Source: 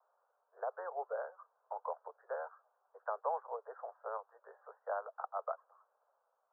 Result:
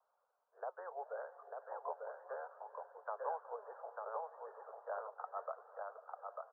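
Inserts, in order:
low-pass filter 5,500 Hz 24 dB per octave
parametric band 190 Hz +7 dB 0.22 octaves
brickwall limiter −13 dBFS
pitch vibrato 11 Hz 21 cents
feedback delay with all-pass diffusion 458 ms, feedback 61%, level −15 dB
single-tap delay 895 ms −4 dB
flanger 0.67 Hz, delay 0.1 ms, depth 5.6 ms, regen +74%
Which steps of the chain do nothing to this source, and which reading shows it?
low-pass filter 5,500 Hz: nothing at its input above 1,700 Hz
parametric band 190 Hz: nothing at its input below 360 Hz
brickwall limiter −13 dBFS: peak of its input −23.0 dBFS

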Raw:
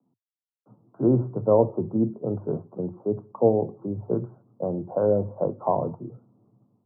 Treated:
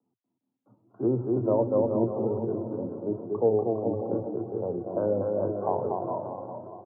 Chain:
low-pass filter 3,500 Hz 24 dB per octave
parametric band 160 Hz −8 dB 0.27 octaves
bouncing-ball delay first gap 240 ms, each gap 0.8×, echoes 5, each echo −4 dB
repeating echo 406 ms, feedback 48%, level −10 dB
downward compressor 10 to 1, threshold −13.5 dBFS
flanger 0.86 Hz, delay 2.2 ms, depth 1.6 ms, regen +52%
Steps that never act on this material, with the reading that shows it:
low-pass filter 3,500 Hz: nothing at its input above 1,100 Hz

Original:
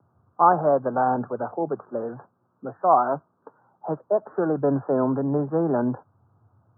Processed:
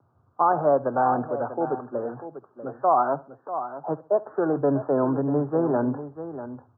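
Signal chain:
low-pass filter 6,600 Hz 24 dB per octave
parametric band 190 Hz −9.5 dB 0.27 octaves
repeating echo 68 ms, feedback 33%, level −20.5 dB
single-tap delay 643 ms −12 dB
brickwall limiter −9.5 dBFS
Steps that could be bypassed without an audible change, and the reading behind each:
low-pass filter 6,600 Hz: nothing at its input above 1,600 Hz

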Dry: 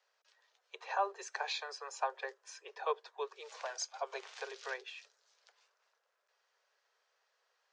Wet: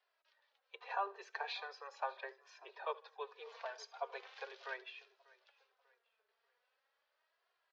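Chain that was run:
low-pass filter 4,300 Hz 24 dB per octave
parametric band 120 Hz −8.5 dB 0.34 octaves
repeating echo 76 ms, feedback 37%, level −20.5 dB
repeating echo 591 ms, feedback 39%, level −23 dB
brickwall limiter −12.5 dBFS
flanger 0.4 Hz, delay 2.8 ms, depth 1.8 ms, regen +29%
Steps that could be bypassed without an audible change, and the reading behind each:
parametric band 120 Hz: nothing at its input below 360 Hz
brickwall limiter −12.5 dBFS: peak of its input −21.0 dBFS

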